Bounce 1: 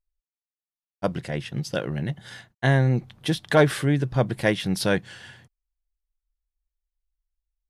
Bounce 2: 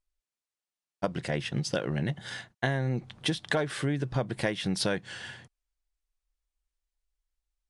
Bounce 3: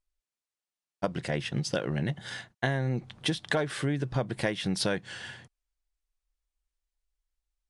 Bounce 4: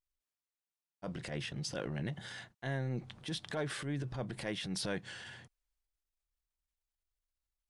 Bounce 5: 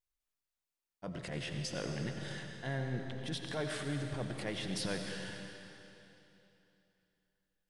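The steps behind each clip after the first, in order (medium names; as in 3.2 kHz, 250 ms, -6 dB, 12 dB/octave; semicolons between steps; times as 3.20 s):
steep low-pass 10 kHz 48 dB/octave; bass shelf 150 Hz -5.5 dB; compression 10:1, threshold -28 dBFS, peak gain reduction 16 dB; trim +3 dB
no audible change
transient shaper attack -10 dB, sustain +5 dB; trim -7 dB
algorithmic reverb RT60 3.1 s, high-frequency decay 0.95×, pre-delay 50 ms, DRR 3.5 dB; trim -1 dB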